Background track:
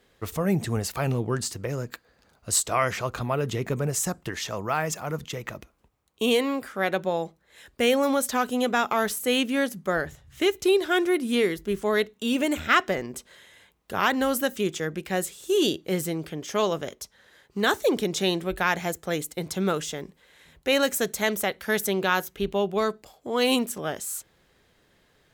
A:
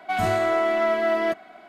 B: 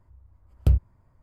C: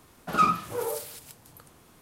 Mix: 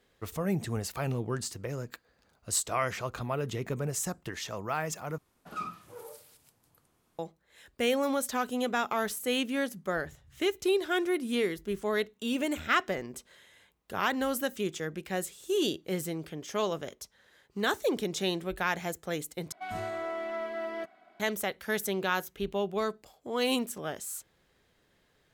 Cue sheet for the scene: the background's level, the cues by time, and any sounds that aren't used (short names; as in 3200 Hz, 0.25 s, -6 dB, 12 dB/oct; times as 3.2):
background track -6 dB
5.18 replace with C -15.5 dB
19.52 replace with A -13.5 dB
not used: B